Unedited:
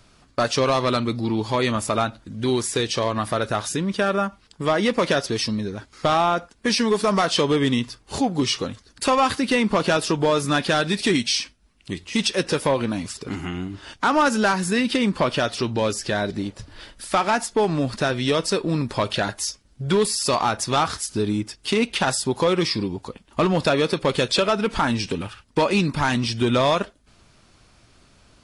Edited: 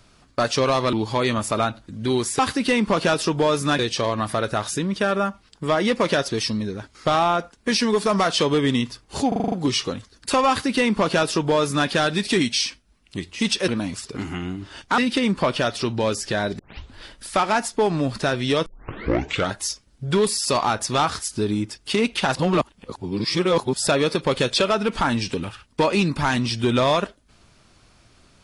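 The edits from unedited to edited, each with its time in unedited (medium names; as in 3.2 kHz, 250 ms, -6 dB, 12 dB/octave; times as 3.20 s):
0.93–1.31 s: delete
8.26 s: stutter 0.04 s, 7 plays
9.22–10.62 s: copy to 2.77 s
12.42–12.80 s: delete
14.10–14.76 s: delete
16.37 s: tape start 0.36 s
18.44 s: tape start 0.88 s
22.13–23.65 s: reverse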